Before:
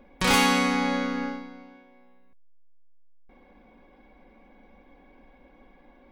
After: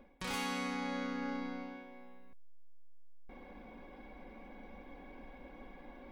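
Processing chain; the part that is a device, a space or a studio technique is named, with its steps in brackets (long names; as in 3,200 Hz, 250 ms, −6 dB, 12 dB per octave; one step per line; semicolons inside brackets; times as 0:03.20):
compression on the reversed sound (reversed playback; downward compressor 6 to 1, threshold −40 dBFS, peak gain reduction 21.5 dB; reversed playback)
level +3 dB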